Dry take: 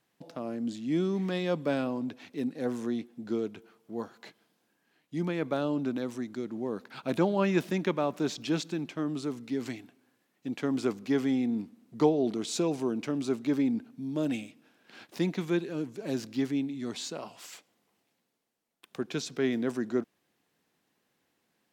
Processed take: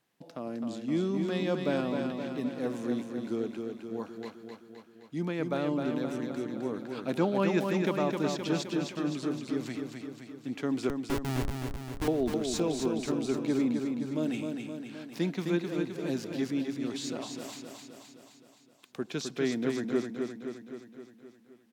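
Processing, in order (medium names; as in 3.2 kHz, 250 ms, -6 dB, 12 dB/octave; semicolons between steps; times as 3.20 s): 10.89–12.08 s: Schmitt trigger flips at -24 dBFS; feedback delay 260 ms, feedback 60%, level -5 dB; trim -1.5 dB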